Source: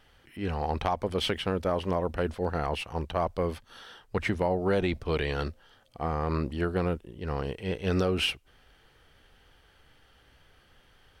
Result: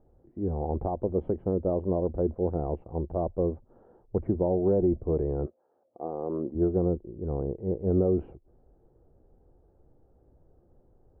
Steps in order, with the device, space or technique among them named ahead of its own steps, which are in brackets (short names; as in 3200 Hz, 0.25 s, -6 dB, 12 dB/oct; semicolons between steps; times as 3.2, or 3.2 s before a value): under water (LPF 670 Hz 24 dB/oct; bell 350 Hz +6.5 dB 0.23 oct); 5.45–6.54 HPF 680 Hz -> 230 Hz 12 dB/oct; gain +1.5 dB